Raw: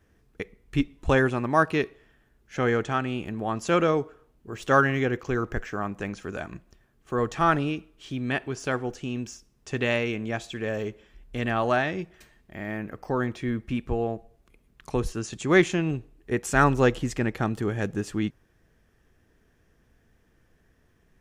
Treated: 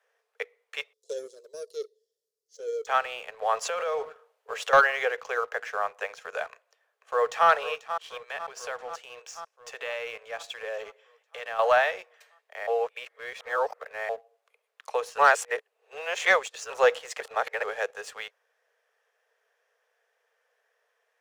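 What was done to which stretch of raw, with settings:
0.93–2.87 s: elliptic band-stop 400–4700 Hz
3.49–4.73 s: compressor with a negative ratio -28 dBFS
6.52–7.48 s: echo throw 490 ms, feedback 70%, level -11.5 dB
8.17–11.59 s: compression 10:1, threshold -30 dBFS
12.67–14.09 s: reverse
15.18–16.70 s: reverse
17.20–17.63 s: reverse
whole clip: steep high-pass 450 Hz 96 dB/octave; treble shelf 6.5 kHz -7 dB; waveshaping leveller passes 1

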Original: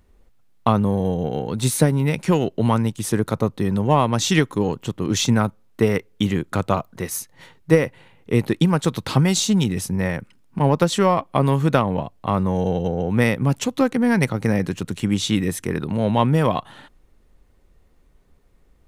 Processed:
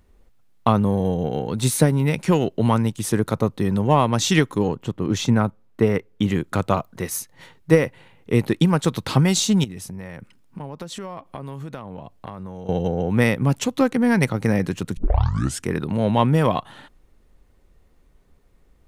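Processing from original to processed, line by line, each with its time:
4.68–6.28 s: treble shelf 2.7 kHz -8.5 dB
9.64–12.69 s: compression, threshold -31 dBFS
14.97 s: tape start 0.69 s

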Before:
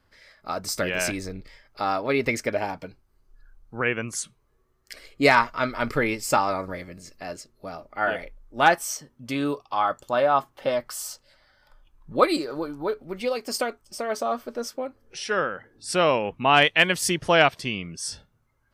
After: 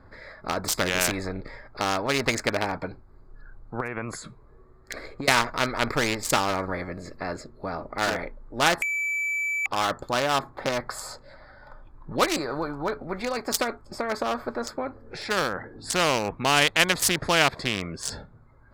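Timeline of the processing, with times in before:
3.80–5.28 s: compression 10:1, threshold -31 dBFS
8.82–9.66 s: bleep 2.31 kHz -15 dBFS
whole clip: local Wiener filter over 15 samples; spectrum-flattening compressor 2:1; trim +2 dB

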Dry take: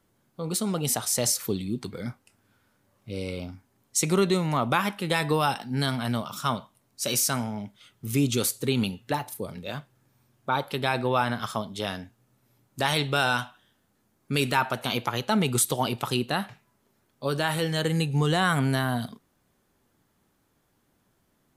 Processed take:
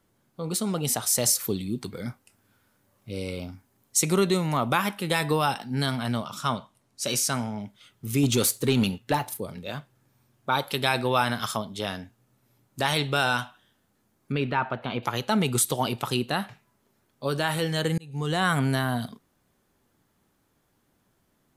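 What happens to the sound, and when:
1.05–5.34 s: treble shelf 9.8 kHz +7 dB
6.03–7.60 s: low-pass 11 kHz
8.23–9.40 s: waveshaping leveller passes 1
10.49–11.57 s: treble shelf 2.8 kHz +8.5 dB
14.32–15.03 s: distance through air 390 m
17.98–18.46 s: fade in linear

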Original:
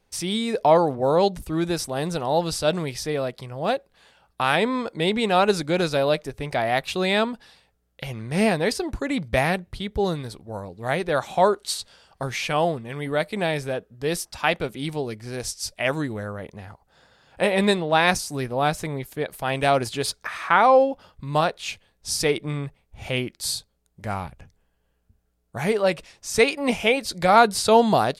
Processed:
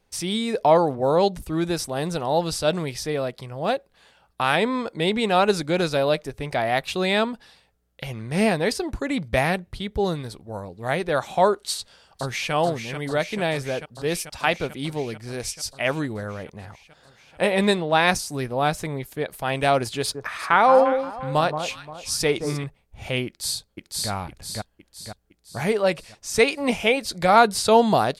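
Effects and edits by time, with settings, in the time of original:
11.75–12.53 s: echo throw 440 ms, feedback 80%, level -7.5 dB
19.97–22.64 s: echo whose repeats swap between lows and highs 175 ms, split 1.3 kHz, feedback 55%, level -7.5 dB
23.26–24.10 s: echo throw 510 ms, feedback 50%, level -1 dB

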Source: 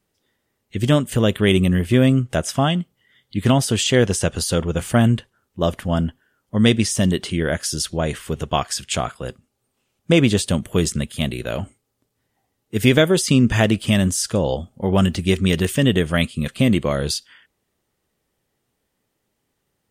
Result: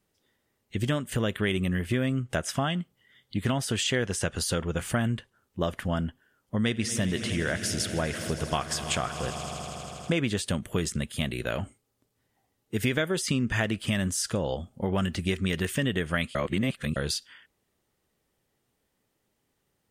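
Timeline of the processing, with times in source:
6.60–10.16 s: echo with a slow build-up 80 ms, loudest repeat 5, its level -18 dB
16.35–16.96 s: reverse
whole clip: dynamic bell 1.7 kHz, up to +7 dB, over -38 dBFS, Q 1.2; compression 3:1, threshold -24 dBFS; trim -2.5 dB

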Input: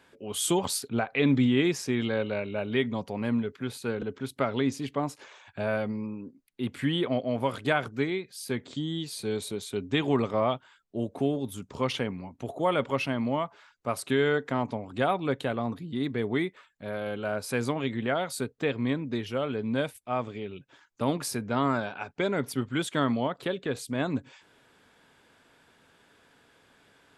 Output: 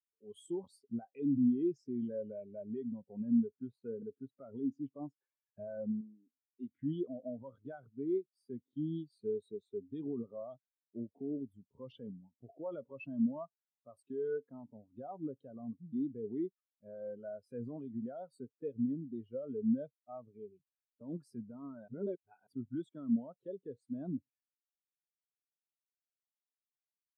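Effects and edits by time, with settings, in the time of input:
6.01–6.71 s: bass shelf 210 Hz -10 dB
21.88–22.47 s: reverse
whole clip: dynamic bell 2.1 kHz, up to -6 dB, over -47 dBFS, Q 2.3; peak limiter -23 dBFS; spectral contrast expander 2.5:1; trim +1.5 dB

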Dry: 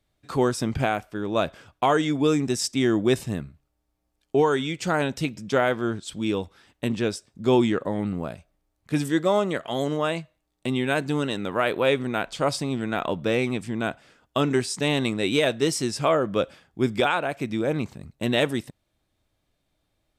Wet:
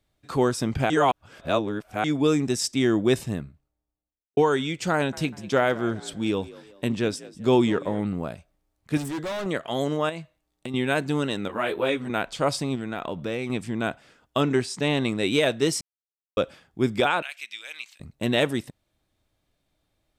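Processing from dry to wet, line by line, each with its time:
0.90–2.04 s: reverse
3.18–4.37 s: studio fade out
4.93–8.02 s: frequency-shifting echo 196 ms, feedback 41%, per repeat +52 Hz, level -19 dB
8.97–9.46 s: hard clipper -28 dBFS
10.09–10.74 s: compression, threshold -29 dBFS
11.48–12.10 s: three-phase chorus
12.75–13.50 s: compression 2.5:1, threshold -28 dBFS
14.42–15.08 s: treble shelf 7.9 kHz -> 5.3 kHz -8 dB
15.81–16.37 s: mute
17.22–18.00 s: resonant high-pass 2.7 kHz, resonance Q 1.8

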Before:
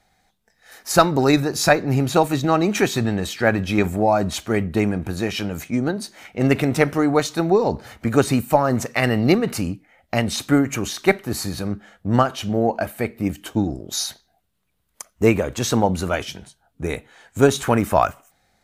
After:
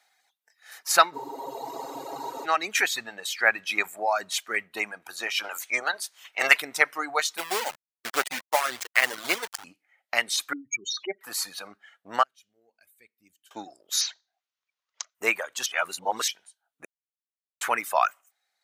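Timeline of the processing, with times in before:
1.15 s: spectral freeze 1.29 s
5.43–6.60 s: spectral peaks clipped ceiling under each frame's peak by 17 dB
7.37–9.64 s: send-on-delta sampling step -18 dBFS
10.53–11.21 s: spectral contrast enhancement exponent 3.1
12.23–13.51 s: amplifier tone stack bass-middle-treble 10-0-1
14.01–15.15 s: careless resampling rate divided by 3×, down none, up filtered
15.66–16.28 s: reverse
16.85–17.61 s: mute
whole clip: reverb removal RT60 1.4 s; high-pass 1 kHz 12 dB/octave; dynamic bell 2 kHz, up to +5 dB, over -38 dBFS, Q 2.4

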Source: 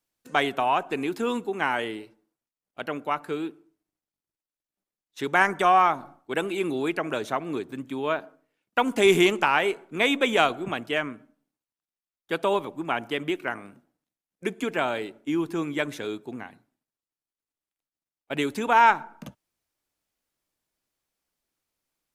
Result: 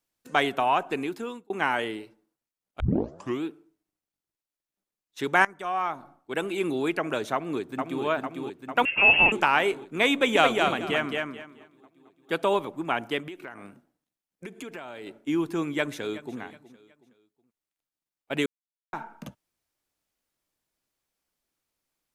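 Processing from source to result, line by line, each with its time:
0.91–1.50 s: fade out
2.80 s: tape start 0.63 s
5.45–6.69 s: fade in, from -20.5 dB
7.33–8.04 s: echo throw 450 ms, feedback 70%, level -4 dB
8.85–9.32 s: frequency inversion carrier 3 kHz
10.13–12.43 s: feedback delay 218 ms, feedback 22%, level -3.5 dB
13.19–15.07 s: compression, threshold -36 dBFS
15.68–16.39 s: echo throw 370 ms, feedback 35%, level -16.5 dB
18.46–18.93 s: mute

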